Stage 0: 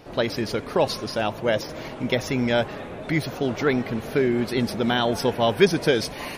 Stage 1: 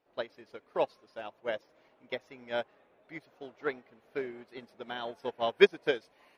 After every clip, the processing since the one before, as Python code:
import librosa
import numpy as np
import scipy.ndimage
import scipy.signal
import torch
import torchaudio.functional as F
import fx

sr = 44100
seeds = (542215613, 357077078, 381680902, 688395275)

y = fx.bass_treble(x, sr, bass_db=-14, treble_db=-8)
y = fx.upward_expand(y, sr, threshold_db=-32.0, expansion=2.5)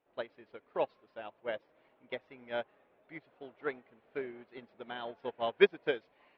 y = scipy.signal.sosfilt(scipy.signal.butter(4, 3500.0, 'lowpass', fs=sr, output='sos'), x)
y = F.gain(torch.from_numpy(y), -3.0).numpy()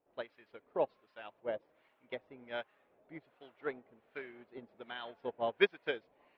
y = fx.harmonic_tremolo(x, sr, hz=1.3, depth_pct=70, crossover_hz=1000.0)
y = F.gain(torch.from_numpy(y), 1.0).numpy()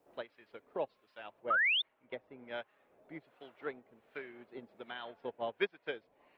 y = fx.spec_paint(x, sr, seeds[0], shape='rise', start_s=1.5, length_s=0.32, low_hz=1200.0, high_hz=3700.0, level_db=-23.0)
y = fx.band_squash(y, sr, depth_pct=40)
y = F.gain(torch.from_numpy(y), -2.5).numpy()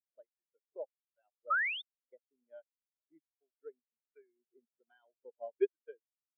y = fx.spectral_expand(x, sr, expansion=2.5)